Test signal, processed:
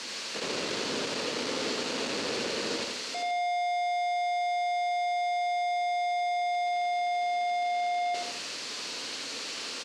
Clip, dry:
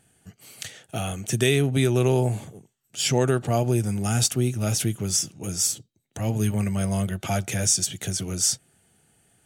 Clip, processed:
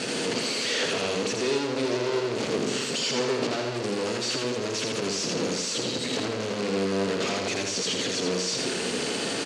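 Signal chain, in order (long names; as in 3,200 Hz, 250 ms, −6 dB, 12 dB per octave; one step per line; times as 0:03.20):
sign of each sample alone
loudspeaker in its box 240–6,900 Hz, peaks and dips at 250 Hz +7 dB, 470 Hz +6 dB, 770 Hz −5 dB, 2,700 Hz +4 dB, 4,400 Hz +7 dB
repeating echo 82 ms, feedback 43%, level −4 dB
dynamic equaliser 460 Hz, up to +5 dB, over −41 dBFS, Q 0.98
surface crackle 220 per second −53 dBFS
level −4.5 dB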